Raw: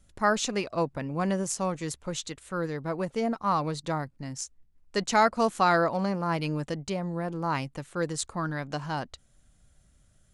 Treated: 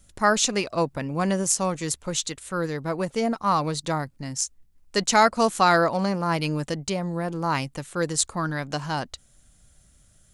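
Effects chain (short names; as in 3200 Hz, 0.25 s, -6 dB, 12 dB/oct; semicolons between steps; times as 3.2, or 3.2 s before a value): high shelf 4000 Hz +8 dB; gain +3.5 dB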